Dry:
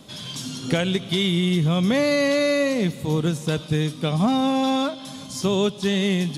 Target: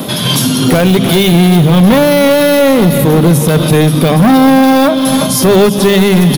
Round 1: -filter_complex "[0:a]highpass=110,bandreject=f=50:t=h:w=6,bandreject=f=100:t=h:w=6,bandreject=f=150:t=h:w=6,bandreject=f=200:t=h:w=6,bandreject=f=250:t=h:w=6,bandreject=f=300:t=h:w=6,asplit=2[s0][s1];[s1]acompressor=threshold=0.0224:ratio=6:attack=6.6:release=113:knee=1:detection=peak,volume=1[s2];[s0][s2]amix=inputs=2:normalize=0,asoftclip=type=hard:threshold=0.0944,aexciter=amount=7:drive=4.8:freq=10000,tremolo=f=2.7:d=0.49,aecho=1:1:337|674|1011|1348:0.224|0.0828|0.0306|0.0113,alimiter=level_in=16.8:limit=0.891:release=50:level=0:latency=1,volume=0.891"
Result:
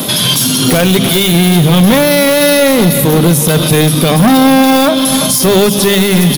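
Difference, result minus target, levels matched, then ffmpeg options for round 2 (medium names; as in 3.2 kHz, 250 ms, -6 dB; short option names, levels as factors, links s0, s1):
4 kHz band +3.5 dB
-filter_complex "[0:a]highpass=110,highshelf=f=2500:g=-9.5,bandreject=f=50:t=h:w=6,bandreject=f=100:t=h:w=6,bandreject=f=150:t=h:w=6,bandreject=f=200:t=h:w=6,bandreject=f=250:t=h:w=6,bandreject=f=300:t=h:w=6,asplit=2[s0][s1];[s1]acompressor=threshold=0.0224:ratio=6:attack=6.6:release=113:knee=1:detection=peak,volume=1[s2];[s0][s2]amix=inputs=2:normalize=0,asoftclip=type=hard:threshold=0.0944,aexciter=amount=7:drive=4.8:freq=10000,tremolo=f=2.7:d=0.49,aecho=1:1:337|674|1011|1348:0.224|0.0828|0.0306|0.0113,alimiter=level_in=16.8:limit=0.891:release=50:level=0:latency=1,volume=0.891"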